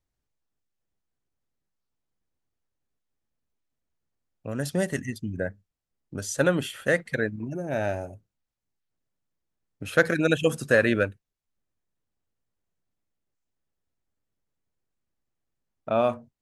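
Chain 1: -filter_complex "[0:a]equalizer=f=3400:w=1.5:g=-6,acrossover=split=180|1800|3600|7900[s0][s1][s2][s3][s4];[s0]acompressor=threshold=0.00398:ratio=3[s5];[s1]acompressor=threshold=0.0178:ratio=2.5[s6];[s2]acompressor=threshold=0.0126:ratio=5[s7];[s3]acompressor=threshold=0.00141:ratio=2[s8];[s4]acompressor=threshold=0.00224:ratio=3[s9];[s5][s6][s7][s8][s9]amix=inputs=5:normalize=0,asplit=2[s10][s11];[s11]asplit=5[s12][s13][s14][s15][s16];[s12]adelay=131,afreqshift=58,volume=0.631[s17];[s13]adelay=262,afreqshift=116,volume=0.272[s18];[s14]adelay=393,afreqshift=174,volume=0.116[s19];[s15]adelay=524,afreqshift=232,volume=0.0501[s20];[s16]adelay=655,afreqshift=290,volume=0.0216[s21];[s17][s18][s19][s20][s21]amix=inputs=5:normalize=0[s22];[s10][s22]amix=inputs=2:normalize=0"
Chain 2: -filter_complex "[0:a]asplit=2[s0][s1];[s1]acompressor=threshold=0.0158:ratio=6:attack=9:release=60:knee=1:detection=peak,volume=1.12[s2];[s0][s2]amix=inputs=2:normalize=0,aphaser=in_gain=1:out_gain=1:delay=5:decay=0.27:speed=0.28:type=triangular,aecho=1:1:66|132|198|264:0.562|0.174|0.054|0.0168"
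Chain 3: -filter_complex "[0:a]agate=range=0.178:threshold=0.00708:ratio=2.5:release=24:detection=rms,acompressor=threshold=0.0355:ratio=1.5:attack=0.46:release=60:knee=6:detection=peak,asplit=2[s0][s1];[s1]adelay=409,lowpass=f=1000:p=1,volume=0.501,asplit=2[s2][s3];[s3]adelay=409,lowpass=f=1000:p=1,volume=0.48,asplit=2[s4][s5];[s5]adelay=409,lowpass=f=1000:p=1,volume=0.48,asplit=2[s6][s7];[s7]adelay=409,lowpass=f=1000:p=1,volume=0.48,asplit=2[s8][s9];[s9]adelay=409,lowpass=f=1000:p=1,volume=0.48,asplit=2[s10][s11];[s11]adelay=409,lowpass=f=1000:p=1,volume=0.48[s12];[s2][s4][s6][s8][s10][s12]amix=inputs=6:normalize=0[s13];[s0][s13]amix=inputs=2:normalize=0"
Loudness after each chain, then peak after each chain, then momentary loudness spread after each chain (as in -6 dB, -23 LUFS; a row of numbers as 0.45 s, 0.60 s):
-34.0 LUFS, -22.5 LUFS, -31.5 LUFS; -15.0 dBFS, -3.5 dBFS, -13.0 dBFS; 14 LU, 17 LU, 18 LU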